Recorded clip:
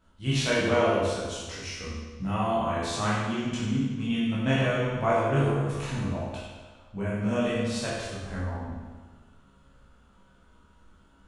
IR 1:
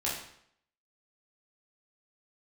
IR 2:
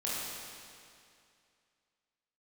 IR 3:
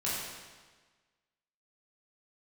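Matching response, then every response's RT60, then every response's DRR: 3; 0.65 s, 2.4 s, 1.4 s; -6.5 dB, -8.0 dB, -8.5 dB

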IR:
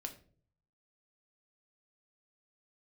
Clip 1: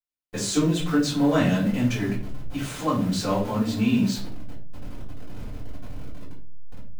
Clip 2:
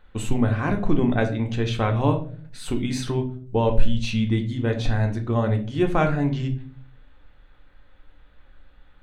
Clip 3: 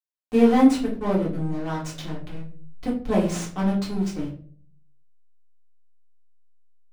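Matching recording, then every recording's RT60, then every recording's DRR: 2; 0.45 s, 0.50 s, 0.45 s; -11.5 dB, 4.0 dB, -5.0 dB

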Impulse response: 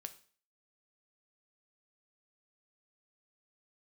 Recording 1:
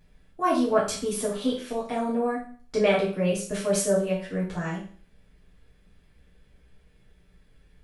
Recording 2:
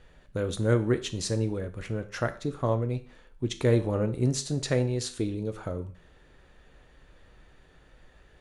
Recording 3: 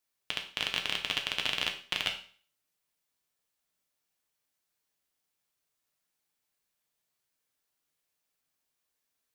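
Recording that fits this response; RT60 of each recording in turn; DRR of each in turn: 2; 0.45 s, 0.45 s, 0.45 s; -7.0 dB, 8.5 dB, 2.5 dB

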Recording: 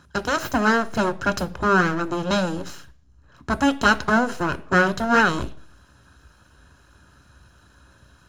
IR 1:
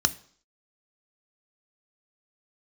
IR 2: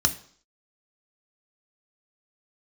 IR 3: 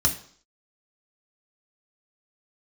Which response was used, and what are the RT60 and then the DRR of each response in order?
1; 0.55 s, 0.55 s, 0.55 s; 10.5 dB, 6.0 dB, 1.0 dB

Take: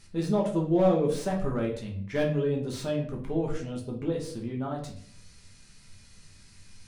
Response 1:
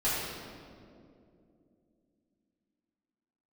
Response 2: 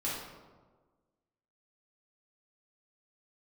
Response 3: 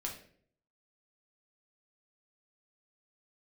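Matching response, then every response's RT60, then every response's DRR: 3; 2.6 s, 1.4 s, 0.55 s; -11.0 dB, -8.0 dB, -1.5 dB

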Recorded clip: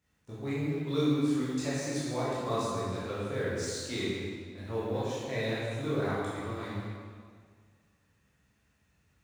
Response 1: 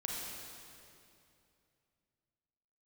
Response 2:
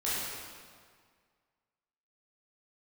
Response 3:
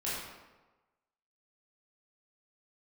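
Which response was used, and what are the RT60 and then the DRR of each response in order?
2; 2.6 s, 1.9 s, 1.2 s; -3.0 dB, -10.0 dB, -9.0 dB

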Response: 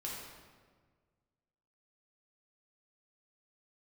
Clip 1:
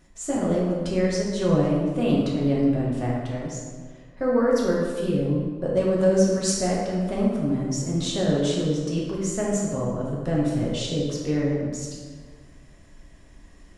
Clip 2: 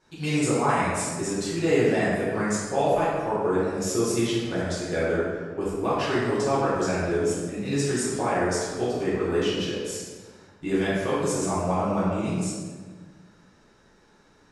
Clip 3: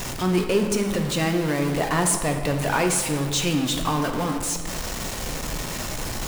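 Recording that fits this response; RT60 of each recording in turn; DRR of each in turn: 1; 1.6 s, 1.6 s, 1.6 s; -5.0 dB, -10.5 dB, 4.0 dB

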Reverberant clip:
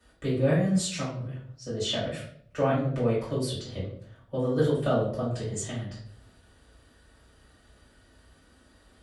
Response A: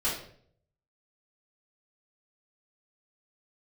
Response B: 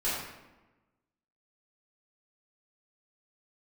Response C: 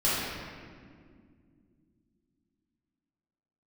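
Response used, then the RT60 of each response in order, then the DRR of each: A; 0.60 s, 1.1 s, 2.1 s; -10.0 dB, -11.0 dB, -11.0 dB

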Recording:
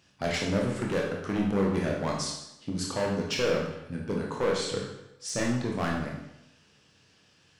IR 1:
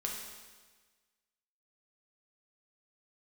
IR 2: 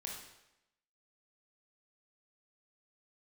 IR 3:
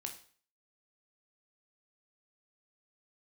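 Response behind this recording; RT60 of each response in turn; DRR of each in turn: 2; 1.4 s, 0.90 s, 0.45 s; -1.5 dB, -1.5 dB, 3.5 dB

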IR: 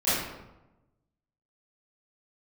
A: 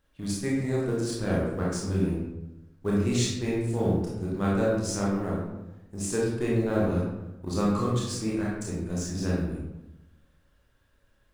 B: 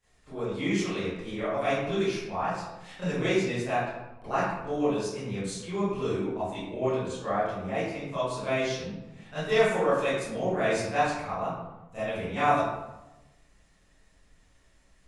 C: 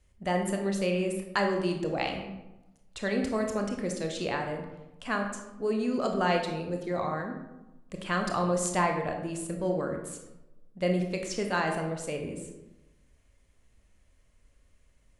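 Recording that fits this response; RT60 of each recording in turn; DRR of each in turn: B; 1.0 s, 1.0 s, 1.0 s; -6.0 dB, -16.0 dB, 3.0 dB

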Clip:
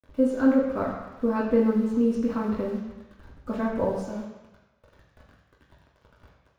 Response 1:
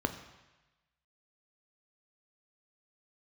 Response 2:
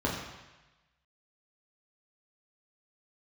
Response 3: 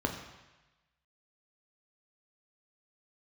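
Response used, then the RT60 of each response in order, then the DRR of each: 2; 1.1 s, 1.1 s, 1.1 s; 7.0 dB, -4.5 dB, 2.0 dB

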